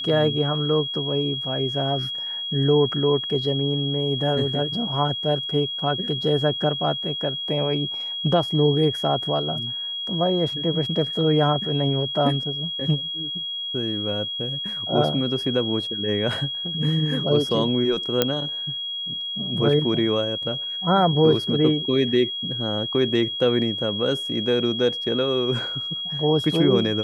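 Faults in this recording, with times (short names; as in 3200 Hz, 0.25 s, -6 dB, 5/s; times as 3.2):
tone 3300 Hz -27 dBFS
18.22 pop -4 dBFS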